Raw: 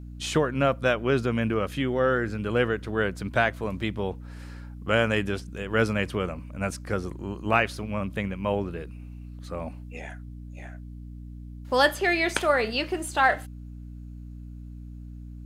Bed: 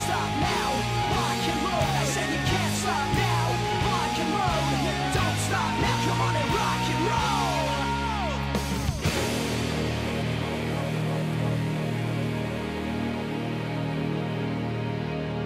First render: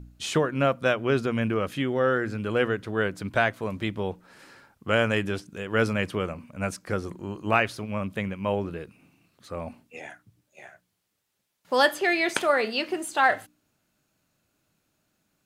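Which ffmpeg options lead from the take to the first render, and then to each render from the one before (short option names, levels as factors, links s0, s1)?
-af "bandreject=f=60:t=h:w=4,bandreject=f=120:t=h:w=4,bandreject=f=180:t=h:w=4,bandreject=f=240:t=h:w=4,bandreject=f=300:t=h:w=4"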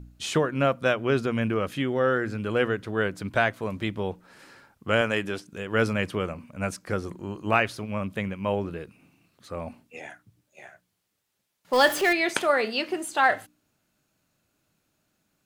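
-filter_complex "[0:a]asettb=1/sr,asplit=3[s0][s1][s2];[s0]atrim=end=5.014[s3];[s1]atrim=start=5.01:end=5.53,asetpts=PTS-STARTPTS,afade=t=in:d=0.004:c=qsin,afade=t=out:st=0.516:d=0.004:c=qsin,highpass=f=220:p=1[s4];[s2]atrim=start=5.526[s5];[s3][s4]acrossfade=d=0.004:c1=hsin:c2=qsin[s6];[s6][s5]acrossfade=d=0.004:c1=qsin:c2=hsin,asettb=1/sr,asplit=3[s7][s8][s9];[s7]atrim=end=11.734[s10];[s8]atrim=start=11.73:end=12.13,asetpts=PTS-STARTPTS,afade=t=in:d=0.004:c=qsin,afade=t=out:st=0.396:d=0.004:c=qsin,aeval=exprs='val(0)+0.5*0.0376*sgn(val(0))':c=same[s11];[s9]atrim=start=12.126[s12];[s10][s11]acrossfade=d=0.004:c1=hsin:c2=qsin[s13];[s13][s12]acrossfade=d=0.004:c1=qsin:c2=hsin"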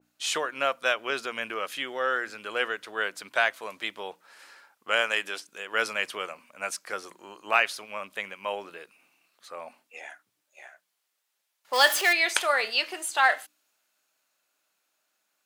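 -af "highpass=710,adynamicequalizer=threshold=0.0126:dfrequency=2200:dqfactor=0.7:tfrequency=2200:tqfactor=0.7:attack=5:release=100:ratio=0.375:range=2.5:mode=boostabove:tftype=highshelf"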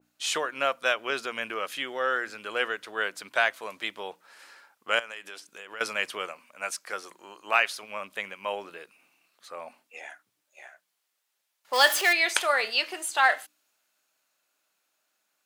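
-filter_complex "[0:a]asettb=1/sr,asplit=3[s0][s1][s2];[s0]atrim=end=4.994[s3];[s1]atrim=start=4.99:end=5.81,asetpts=PTS-STARTPTS,afade=t=in:d=0.004:c=qsin,afade=t=out:st=0.816:d=0.004:c=qsin,acompressor=threshold=0.01:ratio=3:attack=3.2:release=140:knee=1:detection=peak[s4];[s2]atrim=start=5.806[s5];[s3][s4]acrossfade=d=0.004:c1=hsin:c2=qsin[s6];[s6][s5]acrossfade=d=0.004:c1=qsin:c2=hsin,asettb=1/sr,asplit=3[s7][s8][s9];[s7]atrim=end=6.314[s10];[s8]atrim=start=6.31:end=7.83,asetpts=PTS-STARTPTS,afade=t=in:d=0.004:c=qsin,afade=t=out:st=1.516:d=0.004:c=qsin,lowshelf=f=320:g=-6.5[s11];[s9]atrim=start=7.826[s12];[s10][s11]acrossfade=d=0.004:c1=hsin:c2=qsin[s13];[s13][s12]acrossfade=d=0.004:c1=qsin:c2=hsin"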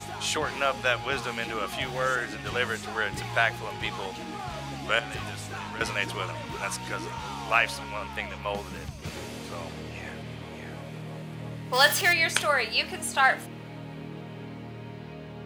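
-filter_complex "[1:a]volume=0.266[s0];[0:a][s0]amix=inputs=2:normalize=0"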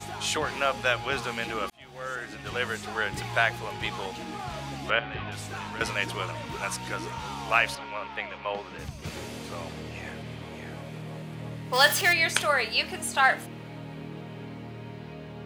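-filter_complex "[0:a]asettb=1/sr,asplit=3[s0][s1][s2];[s0]atrim=end=4.904[s3];[s1]atrim=start=4.9:end=5.32,asetpts=PTS-STARTPTS,afade=t=in:d=0.004:c=qsin,afade=t=out:st=0.416:d=0.004:c=qsin,lowpass=f=3400:w=0.5412,lowpass=f=3400:w=1.3066[s4];[s2]atrim=start=5.316[s5];[s3][s4]acrossfade=d=0.004:c1=hsin:c2=qsin[s6];[s6][s5]acrossfade=d=0.004:c1=qsin:c2=hsin,asettb=1/sr,asplit=3[s7][s8][s9];[s7]atrim=end=7.754[s10];[s8]atrim=start=7.75:end=8.79,asetpts=PTS-STARTPTS,afade=t=in:d=0.004:c=qsin,afade=t=out:st=1.036:d=0.004:c=qsin,acrossover=split=250 4700:gain=0.251 1 0.0891[s11][s12][s13];[s11][s12][s13]amix=inputs=3:normalize=0[s14];[s9]atrim=start=8.786[s15];[s10][s14]acrossfade=d=0.004:c1=hsin:c2=qsin[s16];[s16][s15]acrossfade=d=0.004:c1=qsin:c2=hsin,asplit=2[s17][s18];[s17]atrim=end=1.7,asetpts=PTS-STARTPTS,afade=t=out:st=1.696:d=0.004:c=hsin[s19];[s18]atrim=start=1.7,asetpts=PTS-STARTPTS,afade=t=in:d=1.55:c=qsin[s20];[s19][s20]concat=n=2:v=0:a=1"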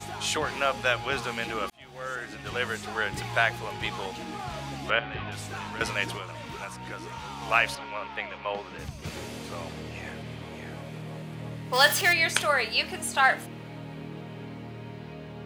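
-filter_complex "[0:a]asettb=1/sr,asplit=3[s0][s1][s2];[s0]atrim=end=6.164[s3];[s1]atrim=start=6.16:end=7.42,asetpts=PTS-STARTPTS,afade=t=in:d=0.004:c=qsin,afade=t=out:st=1.256:d=0.004:c=qsin,acrossover=split=1400|3000[s4][s5][s6];[s4]acompressor=threshold=0.0141:ratio=4[s7];[s5]acompressor=threshold=0.00631:ratio=4[s8];[s6]acompressor=threshold=0.00355:ratio=4[s9];[s7][s8][s9]amix=inputs=3:normalize=0[s10];[s2]atrim=start=7.416[s11];[s3][s10]acrossfade=d=0.004:c1=hsin:c2=qsin[s12];[s12][s11]acrossfade=d=0.004:c1=qsin:c2=hsin"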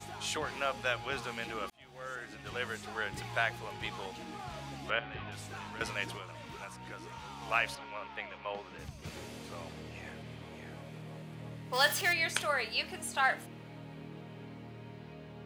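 -af "volume=0.422"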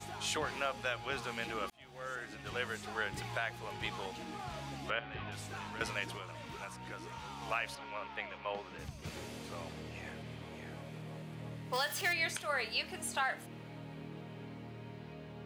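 -af "alimiter=limit=0.075:level=0:latency=1:release=283,areverse,acompressor=mode=upward:threshold=0.00251:ratio=2.5,areverse"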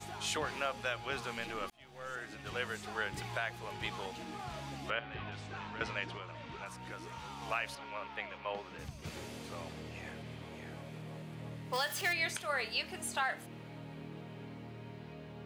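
-filter_complex "[0:a]asettb=1/sr,asplit=3[s0][s1][s2];[s0]atrim=end=1.384[s3];[s1]atrim=start=1.38:end=2.14,asetpts=PTS-STARTPTS,afade=t=in:d=0.004:c=qsin,afade=t=out:st=0.756:d=0.004:c=qsin,aeval=exprs='if(lt(val(0),0),0.708*val(0),val(0))':c=same[s4];[s2]atrim=start=2.136[s5];[s3][s4]acrossfade=d=0.004:c1=hsin:c2=qsin[s6];[s6][s5]acrossfade=d=0.004:c1=qsin:c2=hsin,asettb=1/sr,asplit=3[s7][s8][s9];[s7]atrim=end=5.304[s10];[s8]atrim=start=5.3:end=6.66,asetpts=PTS-STARTPTS,afade=t=in:d=0.004:c=qsin,afade=t=out:st=1.356:d=0.004:c=qsin,lowpass=4300[s11];[s9]atrim=start=6.656[s12];[s10][s11]acrossfade=d=0.004:c1=hsin:c2=qsin[s13];[s13][s12]acrossfade=d=0.004:c1=qsin:c2=hsin"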